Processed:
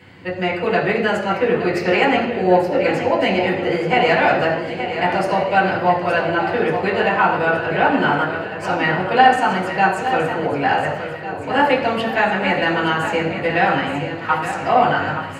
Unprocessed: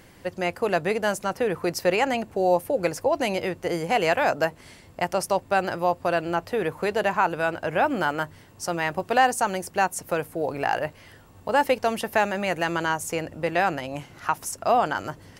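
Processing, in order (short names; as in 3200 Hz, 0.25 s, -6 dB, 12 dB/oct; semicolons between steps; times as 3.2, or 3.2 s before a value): in parallel at -6 dB: soft clip -17 dBFS, distortion -14 dB; on the sum: swung echo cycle 1.451 s, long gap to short 1.5:1, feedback 36%, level -9.5 dB; reverb RT60 0.85 s, pre-delay 3 ms, DRR -6 dB; gain -12 dB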